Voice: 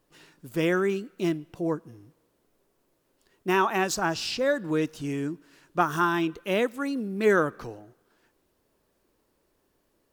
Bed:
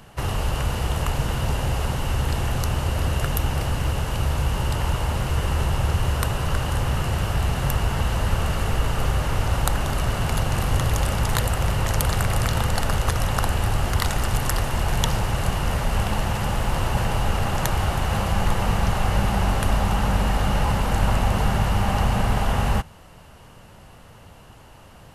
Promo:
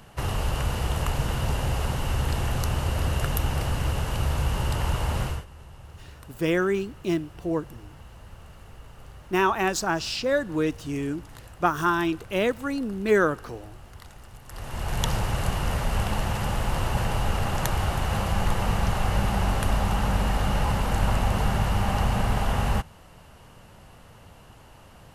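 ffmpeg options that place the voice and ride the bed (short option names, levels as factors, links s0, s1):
-filter_complex "[0:a]adelay=5850,volume=1.12[s0];[1:a]volume=7.94,afade=t=out:st=5.23:d=0.22:silence=0.0891251,afade=t=in:st=14.47:d=0.64:silence=0.0944061[s1];[s0][s1]amix=inputs=2:normalize=0"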